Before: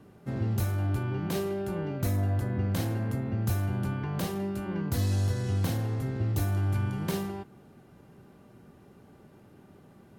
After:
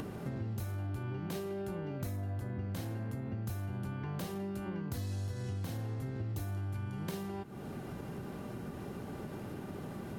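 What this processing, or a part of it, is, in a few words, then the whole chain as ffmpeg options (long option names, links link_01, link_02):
upward and downward compression: -af "acompressor=mode=upward:threshold=-32dB:ratio=2.5,acompressor=threshold=-38dB:ratio=5,volume=1.5dB"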